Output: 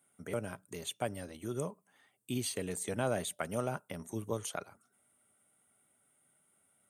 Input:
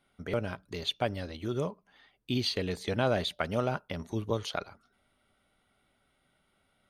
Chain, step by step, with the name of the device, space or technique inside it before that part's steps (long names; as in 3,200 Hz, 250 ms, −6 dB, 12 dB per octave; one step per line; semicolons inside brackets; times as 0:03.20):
budget condenser microphone (high-pass filter 100 Hz 24 dB per octave; high shelf with overshoot 6,100 Hz +12 dB, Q 3)
level −5 dB